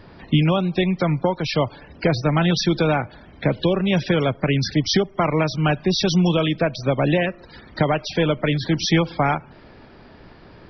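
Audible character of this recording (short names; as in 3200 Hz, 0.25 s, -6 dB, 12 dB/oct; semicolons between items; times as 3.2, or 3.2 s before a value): noise floor -46 dBFS; spectral tilt -5.0 dB/oct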